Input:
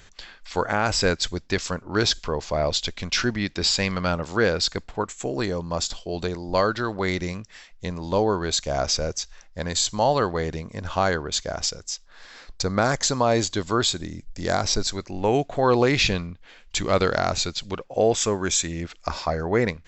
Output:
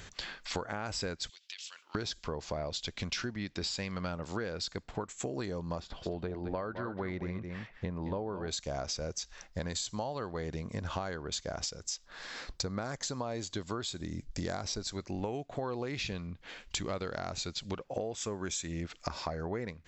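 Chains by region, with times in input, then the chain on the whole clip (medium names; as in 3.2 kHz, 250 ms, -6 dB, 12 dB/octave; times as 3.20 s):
1.29–1.95 s: resonant high-pass 3 kHz, resonance Q 3.4 + compression 8:1, threshold -44 dBFS
5.80–8.48 s: low-pass 2.1 kHz + delay 215 ms -11 dB
whole clip: high-pass 73 Hz 6 dB/octave; bass shelf 260 Hz +4.5 dB; compression 16:1, threshold -35 dBFS; trim +2 dB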